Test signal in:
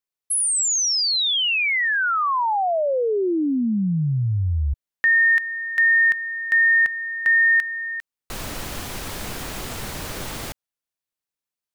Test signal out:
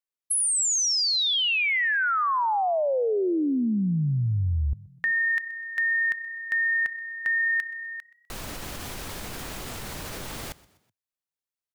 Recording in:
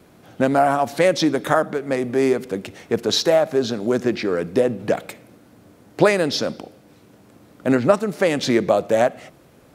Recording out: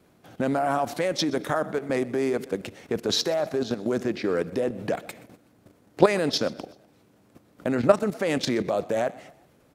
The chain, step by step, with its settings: level held to a coarse grid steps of 12 dB; on a send: frequency-shifting echo 125 ms, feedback 44%, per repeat +31 Hz, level -21.5 dB

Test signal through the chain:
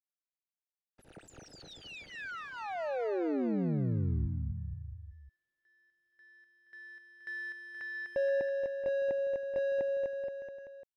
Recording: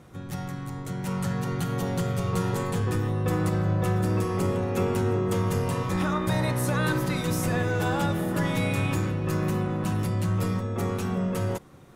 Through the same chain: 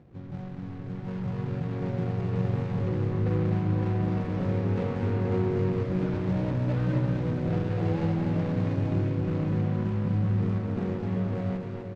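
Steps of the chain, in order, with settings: median filter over 41 samples; distance through air 130 m; on a send: bouncing-ball echo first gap 250 ms, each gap 0.9×, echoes 5; on the sum: trim -2.5 dB

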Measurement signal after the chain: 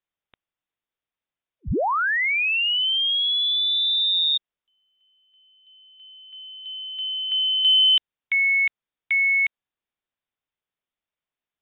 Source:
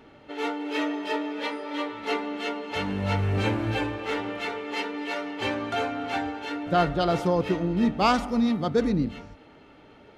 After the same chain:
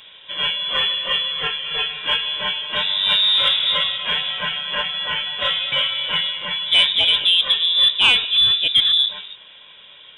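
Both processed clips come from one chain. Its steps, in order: frequency inversion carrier 3.7 kHz; saturation -10 dBFS; trim +7.5 dB

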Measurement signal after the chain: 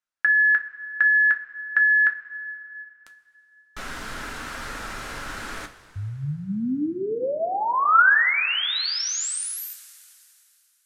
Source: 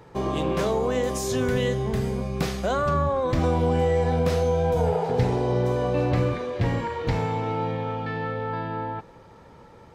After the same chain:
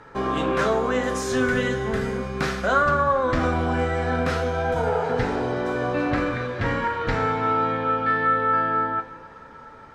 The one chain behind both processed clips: low-pass 9.7 kHz 12 dB/octave; peaking EQ 1.5 kHz +12.5 dB 0.88 oct; two-slope reverb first 0.22 s, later 2.8 s, from -18 dB, DRR 4 dB; trim -1.5 dB

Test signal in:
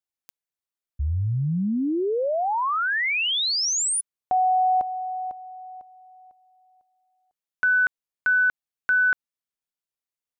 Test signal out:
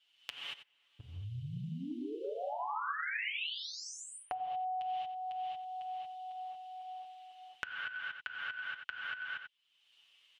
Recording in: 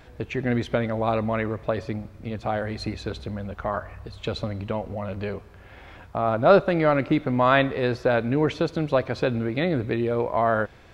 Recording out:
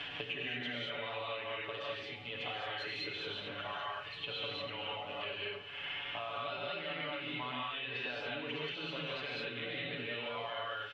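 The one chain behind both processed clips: band-pass filter 3 kHz, Q 8.3; on a send: delay 90 ms -14.5 dB; on the sum: compression, threshold -44 dBFS; tilt EQ -2.5 dB/octave; in parallel at +2.5 dB: peak limiter -45 dBFS; on the sum: comb 7 ms, depth 90%; gated-style reverb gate 250 ms rising, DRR -6.5 dB; three bands compressed up and down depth 100%; trim -2 dB

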